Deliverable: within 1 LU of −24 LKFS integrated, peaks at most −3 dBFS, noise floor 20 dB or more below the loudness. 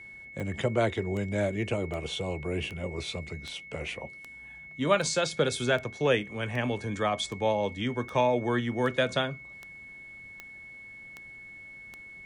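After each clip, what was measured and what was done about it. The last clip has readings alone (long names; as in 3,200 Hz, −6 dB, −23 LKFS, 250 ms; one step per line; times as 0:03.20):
number of clicks 16; interfering tone 2,200 Hz; level of the tone −44 dBFS; integrated loudness −29.5 LKFS; sample peak −12.0 dBFS; target loudness −24.0 LKFS
→ click removal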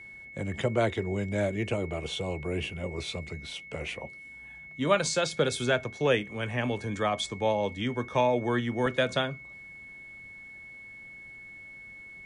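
number of clicks 0; interfering tone 2,200 Hz; level of the tone −44 dBFS
→ notch filter 2,200 Hz, Q 30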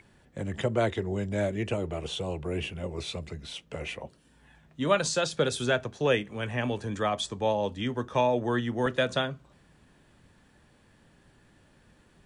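interfering tone none found; integrated loudness −30.0 LKFS; sample peak −12.0 dBFS; target loudness −24.0 LKFS
→ level +6 dB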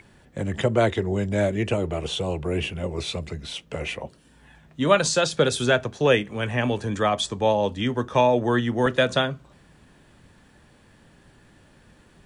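integrated loudness −24.0 LKFS; sample peak −6.0 dBFS; background noise floor −56 dBFS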